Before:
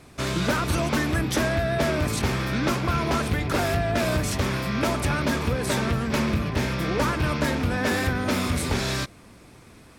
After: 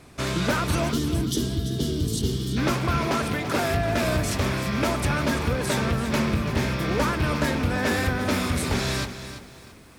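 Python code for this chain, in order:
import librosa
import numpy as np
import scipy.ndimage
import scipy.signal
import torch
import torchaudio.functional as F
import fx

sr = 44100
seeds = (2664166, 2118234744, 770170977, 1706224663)

y = fx.spec_box(x, sr, start_s=0.91, length_s=1.66, low_hz=490.0, high_hz=2800.0, gain_db=-20)
y = fx.highpass(y, sr, hz=140.0, slope=12, at=(3.07, 3.71))
y = fx.echo_crushed(y, sr, ms=337, feedback_pct=35, bits=8, wet_db=-11.0)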